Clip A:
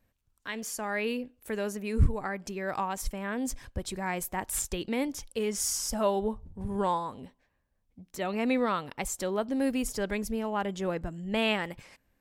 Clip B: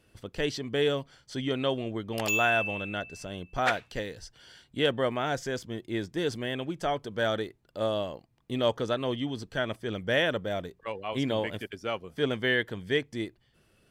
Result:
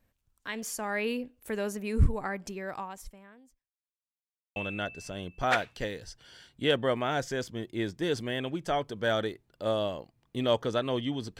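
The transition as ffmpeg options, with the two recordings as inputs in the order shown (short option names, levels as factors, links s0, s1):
-filter_complex "[0:a]apad=whole_dur=11.39,atrim=end=11.39,asplit=2[s0][s1];[s0]atrim=end=3.71,asetpts=PTS-STARTPTS,afade=t=out:st=2.39:d=1.32:c=qua[s2];[s1]atrim=start=3.71:end=4.56,asetpts=PTS-STARTPTS,volume=0[s3];[1:a]atrim=start=2.71:end=9.54,asetpts=PTS-STARTPTS,afade=t=in:d=0.004:c=hsin[s4];[s2][s3][s4]concat=n=3:v=0:a=1"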